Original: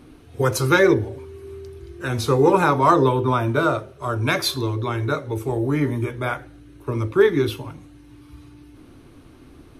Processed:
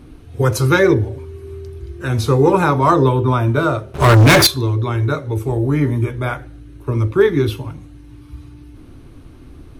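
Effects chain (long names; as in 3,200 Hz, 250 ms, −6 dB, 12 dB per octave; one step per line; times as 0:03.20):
low-shelf EQ 130 Hz +11.5 dB
0:03.94–0:04.47: leveller curve on the samples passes 5
level +1.5 dB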